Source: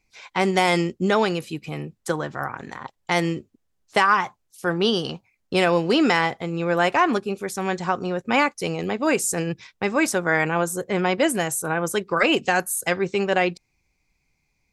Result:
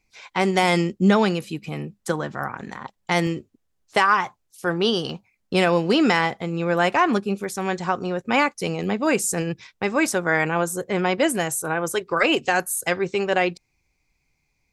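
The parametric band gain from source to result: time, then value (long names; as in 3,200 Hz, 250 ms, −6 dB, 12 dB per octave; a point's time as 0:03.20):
parametric band 200 Hz 0.25 octaves
+1 dB
from 0:00.63 +9 dB
from 0:03.27 −2 dB
from 0:05.10 +6 dB
from 0:07.44 0 dB
from 0:08.55 +6.5 dB
from 0:09.42 −0.5 dB
from 0:11.60 −12 dB
from 0:12.54 −4 dB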